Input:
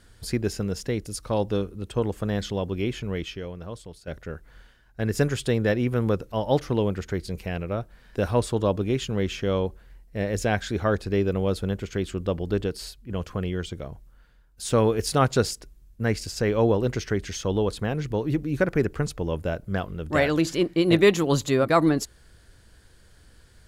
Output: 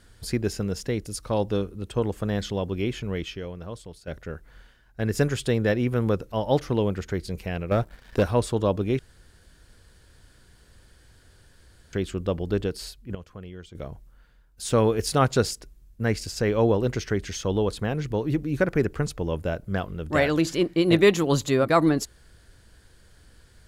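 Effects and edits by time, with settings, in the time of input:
7.71–8.23 s: waveshaping leveller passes 2
8.99–11.93 s: room tone
13.15–13.75 s: gain -12 dB

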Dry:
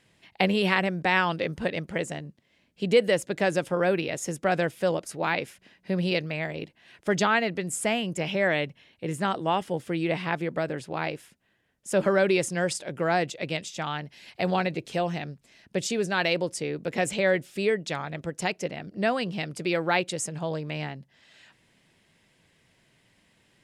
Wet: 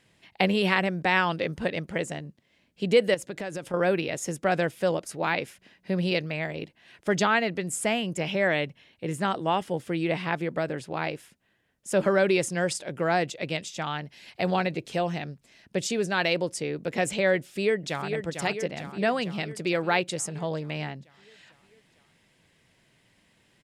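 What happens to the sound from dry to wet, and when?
3.14–3.74 s: compression 4:1, threshold -31 dBFS
17.38–18.10 s: echo throw 450 ms, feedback 65%, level -7 dB

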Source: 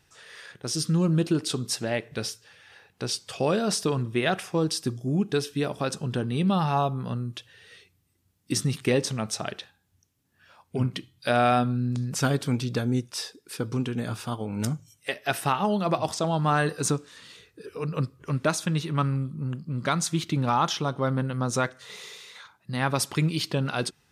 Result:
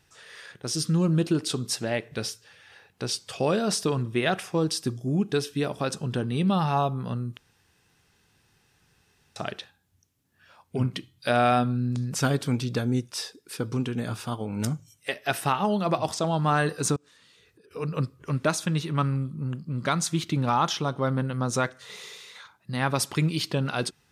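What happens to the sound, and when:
7.37–9.36 s: room tone
16.96–17.71 s: compression 10:1, threshold -54 dBFS

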